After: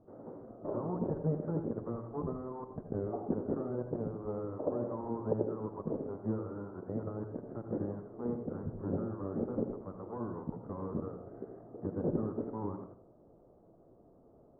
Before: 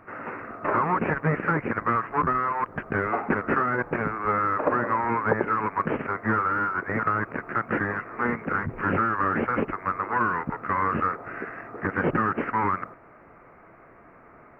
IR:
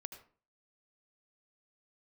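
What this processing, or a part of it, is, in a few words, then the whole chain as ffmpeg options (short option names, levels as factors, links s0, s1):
next room: -filter_complex "[0:a]lowpass=f=640:w=0.5412,lowpass=f=640:w=1.3066[s0];[1:a]atrim=start_sample=2205[s1];[s0][s1]afir=irnorm=-1:irlink=0,volume=0.708"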